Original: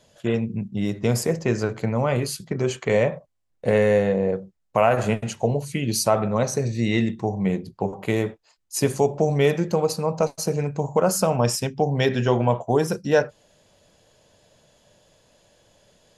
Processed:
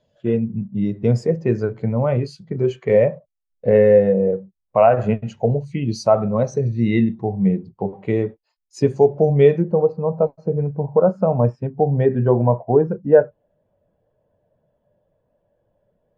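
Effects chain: companding laws mixed up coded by mu; low-pass 5.3 kHz 12 dB/octave, from 9.62 s 1.6 kHz; spectral contrast expander 1.5:1; trim +4.5 dB

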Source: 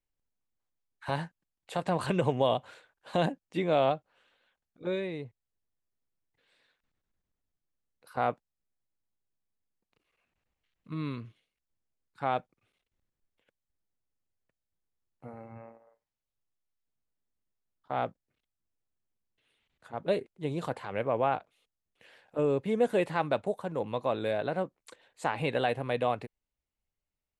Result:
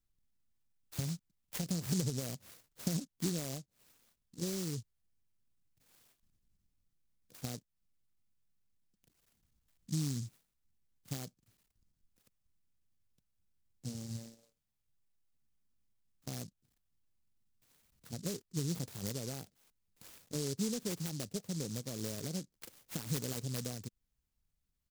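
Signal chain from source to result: dynamic bell 420 Hz, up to +4 dB, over -43 dBFS, Q 6.3; tempo 1.1×; compression 3:1, threshold -38 dBFS, peak gain reduction 13 dB; FFT filter 200 Hz 0 dB, 1 kHz -24 dB, 2.1 kHz -3 dB; delay time shaken by noise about 5.8 kHz, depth 0.22 ms; trim +8 dB

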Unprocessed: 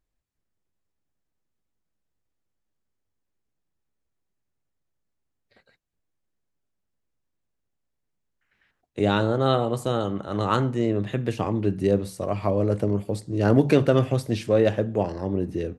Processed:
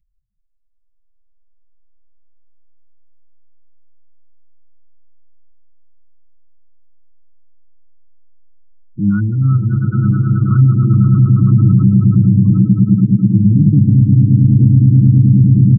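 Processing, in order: local Wiener filter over 9 samples; resonant high shelf 2.1 kHz -14 dB, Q 1.5; echo with a slow build-up 107 ms, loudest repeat 8, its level -6 dB; spectral gate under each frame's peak -10 dB strong; Chebyshev band-stop 210–2100 Hz, order 3; comb 6.2 ms, depth 72%; loudness maximiser +13.5 dB; trim -1 dB

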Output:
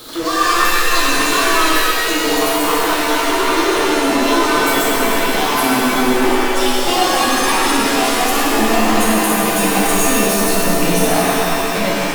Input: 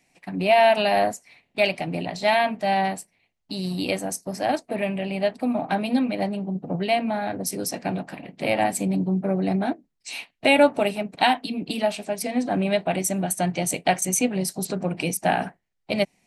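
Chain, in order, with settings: gliding tape speed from 176% -> 92%; power-law waveshaper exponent 0.35; pitch-shifted reverb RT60 2.6 s, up +7 st, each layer -2 dB, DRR -5.5 dB; trim -10.5 dB

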